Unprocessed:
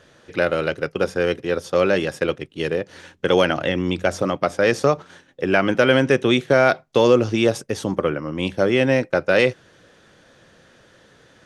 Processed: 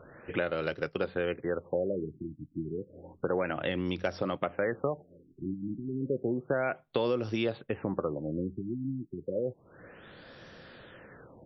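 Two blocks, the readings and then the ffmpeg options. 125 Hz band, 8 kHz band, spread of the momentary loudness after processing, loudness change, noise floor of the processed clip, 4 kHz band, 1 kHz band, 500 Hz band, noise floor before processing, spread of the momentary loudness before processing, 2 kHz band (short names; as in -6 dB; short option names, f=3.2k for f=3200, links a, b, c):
-11.5 dB, under -25 dB, 20 LU, -13.5 dB, -62 dBFS, -17.0 dB, -14.0 dB, -13.5 dB, -54 dBFS, 9 LU, -16.0 dB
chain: -af "acompressor=threshold=-33dB:ratio=3,afftfilt=real='re*lt(b*sr/1024,330*pow(5900/330,0.5+0.5*sin(2*PI*0.31*pts/sr)))':imag='im*lt(b*sr/1024,330*pow(5900/330,0.5+0.5*sin(2*PI*0.31*pts/sr)))':win_size=1024:overlap=0.75,volume=1.5dB"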